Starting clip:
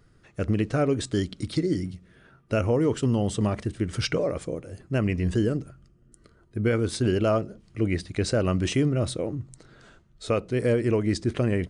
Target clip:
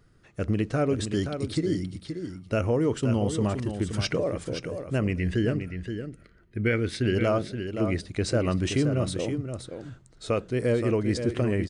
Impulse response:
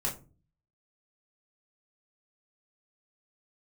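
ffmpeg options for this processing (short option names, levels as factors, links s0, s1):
-filter_complex "[0:a]asettb=1/sr,asplit=3[s0][s1][s2];[s0]atrim=end=5.184[s3];[s1]atrim=start=5.18:end=7.15,asetpts=PTS-STARTPTS,afade=t=in:d=0.004:c=qsin,afade=t=out:st=1.966:d=0.004:c=qsin,equalizer=f=1000:t=o:w=1:g=-8,equalizer=f=2000:t=o:w=1:g=11,equalizer=f=8000:t=o:w=1:g=-8[s4];[s2]atrim=start=7.146[s5];[s3][s4]acrossfade=d=0.004:c1=hsin:c2=qsin[s6];[s6][s5]acrossfade=d=0.004:c1=qsin:c2=hsin,aecho=1:1:523:0.398,volume=0.841"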